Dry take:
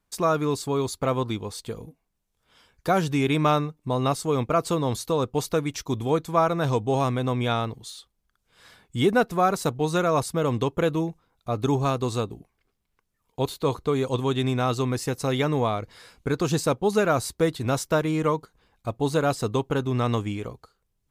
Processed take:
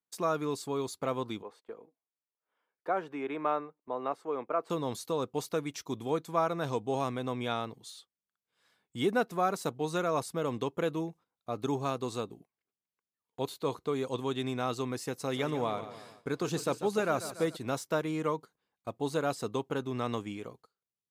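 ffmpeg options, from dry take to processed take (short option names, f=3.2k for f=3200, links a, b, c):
-filter_complex "[0:a]asettb=1/sr,asplit=3[a][b][c];[a]atrim=end=1.424[d];[b]atrim=start=1.42:end=4.7,asetpts=PTS-STARTPTS,afade=t=in:d=0.004:c=qsin,afade=t=out:st=3.276:d=0.004:c=qsin,acrossover=split=300 2200:gain=0.1 1 0.0708[e][f][g];[e][f][g]amix=inputs=3:normalize=0[h];[c]atrim=start=4.696[i];[d][h]acrossfade=d=0.004:c1=hsin:c2=qsin[j];[j][i]acrossfade=d=0.004:c1=qsin:c2=hsin,asplit=3[k][l][m];[k]afade=t=out:st=15.31:d=0.02[n];[l]aecho=1:1:144|288|432|576|720:0.251|0.123|0.0603|0.0296|0.0145,afade=t=in:st=15.31:d=0.02,afade=t=out:st=17.55:d=0.02[o];[m]afade=t=in:st=17.55:d=0.02[p];[n][o][p]amix=inputs=3:normalize=0,highpass=170,deesser=0.55,agate=range=-11dB:threshold=-47dB:ratio=16:detection=peak,volume=-7.5dB"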